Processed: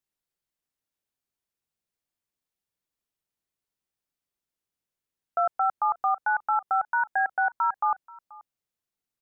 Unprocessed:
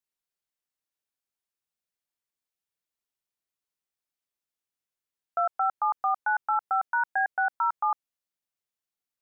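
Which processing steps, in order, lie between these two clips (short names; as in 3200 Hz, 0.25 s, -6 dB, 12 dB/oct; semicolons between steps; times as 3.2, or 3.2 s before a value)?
low shelf 460 Hz +7.5 dB; on a send: echo 0.482 s -22.5 dB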